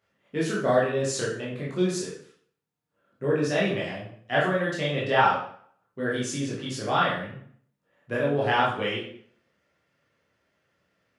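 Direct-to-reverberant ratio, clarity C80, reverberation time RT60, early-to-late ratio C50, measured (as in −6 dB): −6.5 dB, 7.5 dB, 0.55 s, 3.0 dB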